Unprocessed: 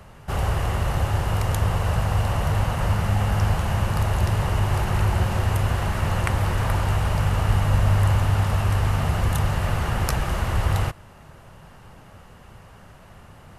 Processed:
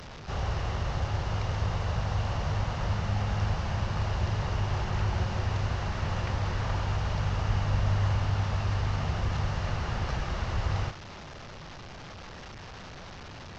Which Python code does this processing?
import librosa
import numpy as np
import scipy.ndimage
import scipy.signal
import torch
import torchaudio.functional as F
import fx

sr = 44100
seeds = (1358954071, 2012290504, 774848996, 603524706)

y = fx.delta_mod(x, sr, bps=32000, step_db=-30.0)
y = F.gain(torch.from_numpy(y), -7.5).numpy()